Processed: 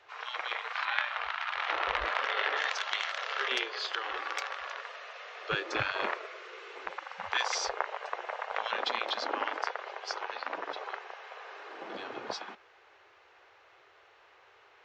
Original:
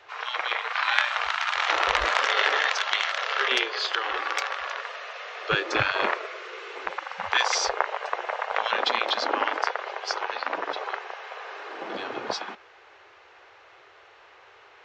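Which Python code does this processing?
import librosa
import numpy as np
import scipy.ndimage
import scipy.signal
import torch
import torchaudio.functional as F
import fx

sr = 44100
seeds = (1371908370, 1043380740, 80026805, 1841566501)

y = fx.lowpass(x, sr, hz=3500.0, slope=12, at=(0.85, 2.57))
y = F.gain(torch.from_numpy(y), -7.5).numpy()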